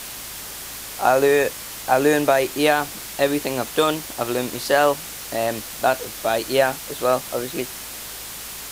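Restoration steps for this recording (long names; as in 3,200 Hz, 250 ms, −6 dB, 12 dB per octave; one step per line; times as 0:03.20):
hum removal 53.6 Hz, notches 9
noise reduction from a noise print 30 dB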